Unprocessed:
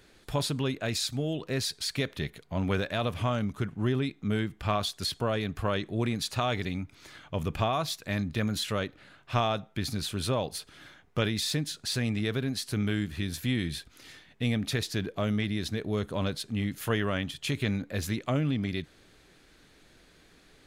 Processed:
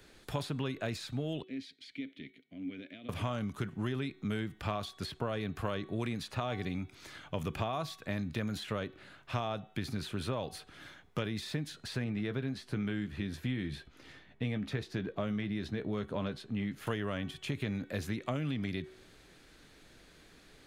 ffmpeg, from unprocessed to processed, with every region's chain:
-filter_complex "[0:a]asettb=1/sr,asplit=3[s0][s1][s2];[s0]atrim=end=1.424[s3];[s1]atrim=start=1.42:end=3.09,asetpts=PTS-STARTPTS,afade=t=in:d=0.004:c=qsin,afade=t=out:st=1.666:d=0.004:c=qsin,equalizer=f=730:w=2:g=13,acompressor=threshold=0.0501:ratio=4:attack=3.2:release=140:knee=1:detection=peak,asplit=3[s4][s5][s6];[s4]bandpass=f=270:t=q:w=8,volume=1[s7];[s5]bandpass=f=2290:t=q:w=8,volume=0.501[s8];[s6]bandpass=f=3010:t=q:w=8,volume=0.355[s9];[s7][s8][s9]amix=inputs=3:normalize=0[s10];[s2]atrim=start=3.086[s11];[s3][s10]acrossfade=d=0.004:c1=hsin:c2=qsin[s12];[s12][s11]acrossfade=d=0.004:c1=qsin:c2=hsin,asettb=1/sr,asplit=3[s13][s14][s15];[s13]atrim=end=12.044[s16];[s14]atrim=start=12.04:end=16.87,asetpts=PTS-STARTPTS,afade=t=in:d=0.004:c=qsin,afade=t=out:st=4.826:d=0.004:c=qsin,lowpass=f=1600:p=1,asplit=2[s17][s18];[s18]adelay=15,volume=0.282[s19];[s17][s19]amix=inputs=2:normalize=0,atrim=end_sample=213003[s20];[s15]atrim=start=16.866[s21];[s16][s20]acrossfade=d=0.004:c1=hsin:c2=qsin[s22];[s22][s21]acrossfade=d=0.004:c1=qsin:c2=hsin,bandreject=f=375.5:t=h:w=4,bandreject=f=751:t=h:w=4,bandreject=f=1126.5:t=h:w=4,bandreject=f=1502:t=h:w=4,bandreject=f=1877.5:t=h:w=4,bandreject=f=2253:t=h:w=4,bandreject=f=2628.5:t=h:w=4,bandreject=f=3004:t=h:w=4,bandreject=f=3379.5:t=h:w=4,bandreject=f=3755:t=h:w=4,bandreject=f=4130.5:t=h:w=4,acrossover=split=91|1100|2600[s23][s24][s25][s26];[s23]acompressor=threshold=0.00224:ratio=4[s27];[s24]acompressor=threshold=0.0224:ratio=4[s28];[s25]acompressor=threshold=0.00562:ratio=4[s29];[s26]acompressor=threshold=0.00316:ratio=4[s30];[s27][s28][s29][s30]amix=inputs=4:normalize=0"

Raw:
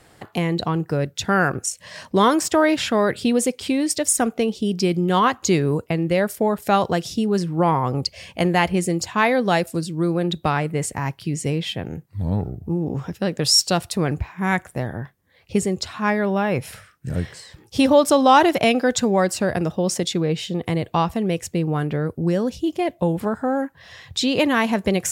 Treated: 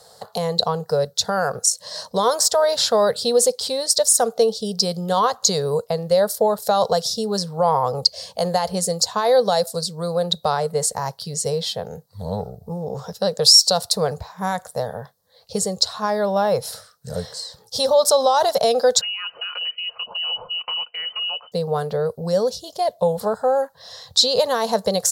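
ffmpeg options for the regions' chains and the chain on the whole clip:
-filter_complex "[0:a]asettb=1/sr,asplit=3[s0][s1][s2];[s0]atrim=end=19.014[s3];[s1]atrim=start=19.01:end=21.52,asetpts=PTS-STARTPTS,afade=t=in:d=0.004:c=qsin,afade=t=out:st=2.506:d=0.004:c=qsin,equalizer=f=110:t=o:w=1.4:g=8,aecho=1:1:5.4:0.5,atrim=end_sample=110691,lowpass=f=2600:t=q:w=0.5098,lowpass=f=2600:t=q:w=0.6013,lowpass=f=2600:t=q:w=0.9,lowpass=f=2600:t=q:w=2.563,afreqshift=-3100[s4];[s2]atrim=start=21.516[s5];[s3][s4]acrossfade=d=0.004:c1=hsin:c2=qsin[s6];[s6][s5]acrossfade=d=0.004:c1=qsin:c2=hsin,lowshelf=f=130:g=-11.5,alimiter=limit=0.251:level=0:latency=1:release=69,firequalizer=gain_entry='entry(200,0);entry(320,-22);entry(450,9);entry(1300,1);entry(2400,-14);entry(4100,14);entry(6800,8)':delay=0.05:min_phase=1,volume=0.891"

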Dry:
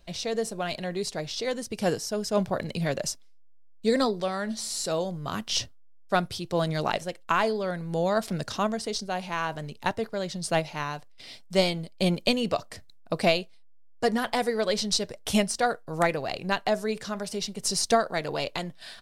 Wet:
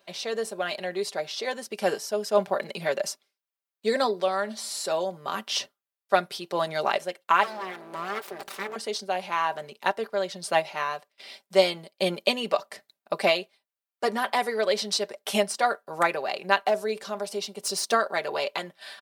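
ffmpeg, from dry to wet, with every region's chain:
-filter_complex "[0:a]asettb=1/sr,asplit=3[s0][s1][s2];[s0]atrim=end=7.434[s3];[s1]atrim=start=7.43:end=8.76,asetpts=PTS-STARTPTS,afade=t=in:d=0.004:c=qsin,afade=t=out:st=1.326:d=0.004:c=qsin,acompressor=threshold=0.0224:ratio=1.5:attack=3.2:release=140:knee=1:detection=peak,aeval=exprs='val(0)+0.00501*(sin(2*PI*60*n/s)+sin(2*PI*2*60*n/s)/2+sin(2*PI*3*60*n/s)/3+sin(2*PI*4*60*n/s)/4+sin(2*PI*5*60*n/s)/5)':c=same,aeval=exprs='abs(val(0))':c=same[s4];[s2]atrim=start=8.756[s5];[s3][s4]acrossfade=d=0.004:c1=hsin:c2=qsin[s6];[s6][s5]acrossfade=d=0.004:c1=qsin:c2=hsin,asettb=1/sr,asplit=3[s7][s8][s9];[s7]atrim=end=16.654[s10];[s8]atrim=start=16.65:end=17.93,asetpts=PTS-STARTPTS,afade=t=in:d=0.004:c=qsin,afade=t=out:st=1.276:d=0.004:c=qsin,equalizer=f=1800:t=o:w=0.81:g=-5.5,volume=10,asoftclip=hard,volume=0.1[s11];[s9]atrim=start=17.926[s12];[s10][s11]acrossfade=d=0.004:c1=hsin:c2=qsin[s13];[s13][s12]acrossfade=d=0.004:c1=qsin:c2=hsin,highpass=450,equalizer=f=6600:t=o:w=1.6:g=-7,aecho=1:1:5.1:0.57,volume=1.41"

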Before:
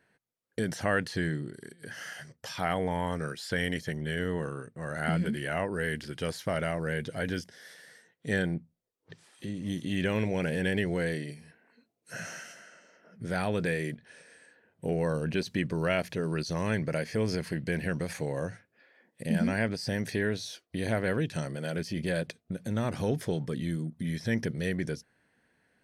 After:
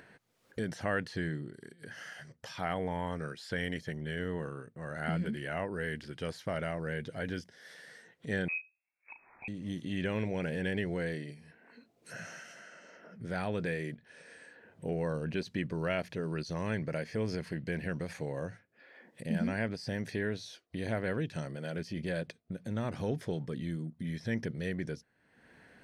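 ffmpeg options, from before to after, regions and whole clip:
-filter_complex "[0:a]asettb=1/sr,asplit=3[s0][s1][s2];[s0]atrim=end=8.484[s3];[s1]atrim=start=8.48:end=9.48,asetpts=PTS-STARTPTS,afade=t=in:d=0.004:c=qsin,afade=t=out:st=0.996:d=0.004:c=qsin,asplit=2[s4][s5];[s5]adelay=36,volume=0.355[s6];[s4][s6]amix=inputs=2:normalize=0,atrim=end_sample=44100,lowpass=f=2300:t=q:w=0.5098,lowpass=f=2300:t=q:w=0.6013,lowpass=f=2300:t=q:w=0.9,lowpass=f=2300:t=q:w=2.563,afreqshift=-2700[s7];[s2]atrim=start=9.476[s8];[s3][s7]acrossfade=d=0.004:c1=hsin:c2=qsin[s9];[s9][s8]acrossfade=d=0.004:c1=qsin:c2=hsin,highshelf=f=7800:g=-11,acompressor=mode=upward:threshold=0.0112:ratio=2.5,volume=0.596"

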